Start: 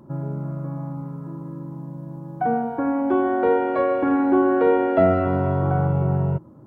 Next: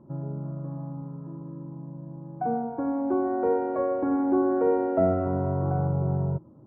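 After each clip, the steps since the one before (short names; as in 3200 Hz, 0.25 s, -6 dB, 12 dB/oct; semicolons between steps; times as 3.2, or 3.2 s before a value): LPF 1000 Hz 12 dB/oct; gain -5 dB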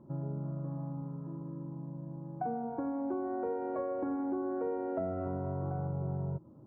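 compressor, threshold -29 dBFS, peak gain reduction 11 dB; gain -3 dB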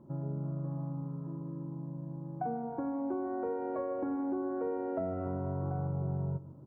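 feedback echo 0.152 s, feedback 41%, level -17 dB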